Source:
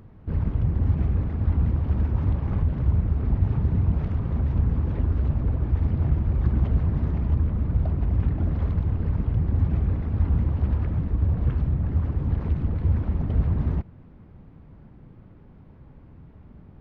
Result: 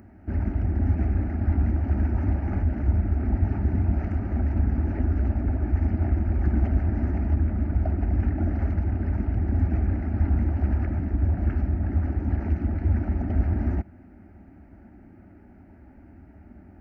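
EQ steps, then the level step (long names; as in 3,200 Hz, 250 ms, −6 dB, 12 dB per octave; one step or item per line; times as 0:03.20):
high-pass filter 64 Hz
phaser with its sweep stopped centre 710 Hz, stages 8
+5.5 dB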